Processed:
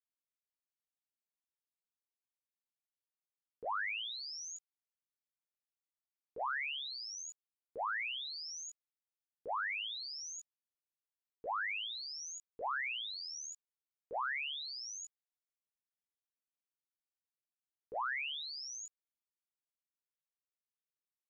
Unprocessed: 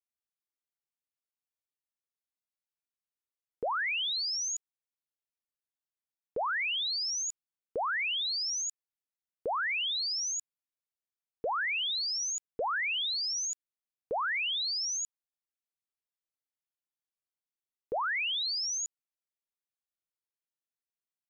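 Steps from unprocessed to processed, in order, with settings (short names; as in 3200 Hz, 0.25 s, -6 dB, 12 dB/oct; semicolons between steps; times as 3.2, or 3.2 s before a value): chorus 0.51 Hz, delay 15 ms, depth 4.6 ms; gate -33 dBFS, range -11 dB; gain +2 dB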